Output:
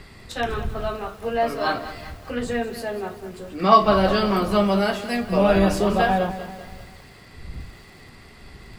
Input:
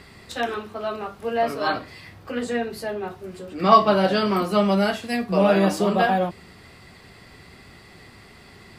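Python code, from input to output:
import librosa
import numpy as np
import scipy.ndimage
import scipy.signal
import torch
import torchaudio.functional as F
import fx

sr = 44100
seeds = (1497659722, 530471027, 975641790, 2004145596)

y = fx.dmg_wind(x, sr, seeds[0], corner_hz=81.0, level_db=-37.0)
y = fx.echo_crushed(y, sr, ms=195, feedback_pct=55, bits=7, wet_db=-12.5)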